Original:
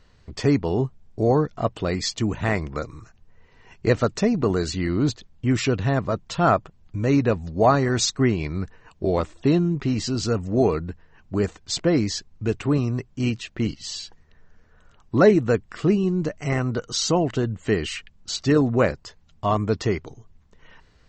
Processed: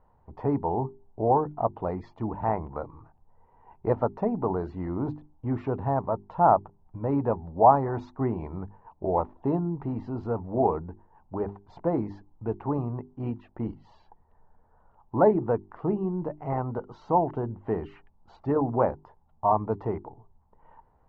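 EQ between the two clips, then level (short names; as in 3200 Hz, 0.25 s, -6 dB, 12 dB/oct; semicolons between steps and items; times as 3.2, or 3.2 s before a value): synth low-pass 880 Hz, resonance Q 6.6; air absorption 51 m; notches 50/100/150/200/250/300/350/400 Hz; -7.5 dB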